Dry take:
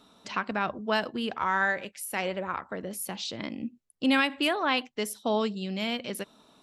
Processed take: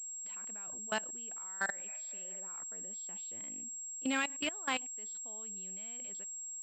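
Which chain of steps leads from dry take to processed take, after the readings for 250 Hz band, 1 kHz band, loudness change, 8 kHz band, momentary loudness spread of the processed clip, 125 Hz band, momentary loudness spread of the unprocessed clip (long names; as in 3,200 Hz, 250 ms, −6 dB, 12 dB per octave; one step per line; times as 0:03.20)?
−13.5 dB, −13.5 dB, −9.0 dB, +6.5 dB, 7 LU, −20.5 dB, 11 LU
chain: high-shelf EQ 2,800 Hz +7 dB
healed spectral selection 0:01.89–0:02.35, 560–2,600 Hz
low-shelf EQ 120 Hz −5.5 dB
output level in coarse steps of 24 dB
switching amplifier with a slow clock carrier 7,600 Hz
level −7.5 dB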